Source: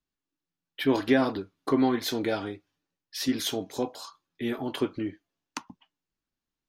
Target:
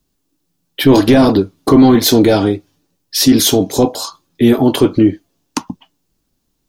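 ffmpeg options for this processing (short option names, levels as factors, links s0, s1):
-af "apsyclip=15.8,equalizer=f=1800:w=0.57:g=-11,volume=0.891"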